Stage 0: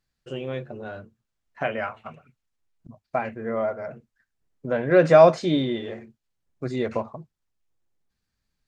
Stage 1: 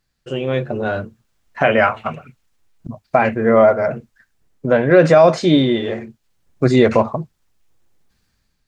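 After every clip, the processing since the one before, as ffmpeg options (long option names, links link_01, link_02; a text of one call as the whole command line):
ffmpeg -i in.wav -af "dynaudnorm=framelen=250:gausssize=5:maxgain=8.5dB,alimiter=level_in=8.5dB:limit=-1dB:release=50:level=0:latency=1,volume=-1dB" out.wav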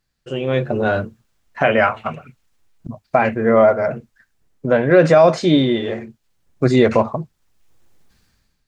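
ffmpeg -i in.wav -af "dynaudnorm=framelen=160:gausssize=7:maxgain=8.5dB,volume=-2dB" out.wav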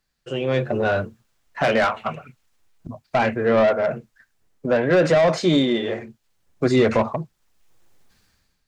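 ffmpeg -i in.wav -filter_complex "[0:a]acrossover=split=370[link_01][link_02];[link_01]flanger=delay=3.9:depth=8:regen=-49:speed=0.53:shape=triangular[link_03];[link_02]asoftclip=type=tanh:threshold=-14.5dB[link_04];[link_03][link_04]amix=inputs=2:normalize=0" out.wav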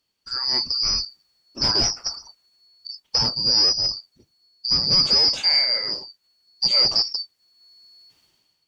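ffmpeg -i in.wav -af "afftfilt=real='real(if(lt(b,272),68*(eq(floor(b/68),0)*1+eq(floor(b/68),1)*2+eq(floor(b/68),2)*3+eq(floor(b/68),3)*0)+mod(b,68),b),0)':imag='imag(if(lt(b,272),68*(eq(floor(b/68),0)*1+eq(floor(b/68),1)*2+eq(floor(b/68),2)*3+eq(floor(b/68),3)*0)+mod(b,68),b),0)':win_size=2048:overlap=0.75,volume=-1.5dB" out.wav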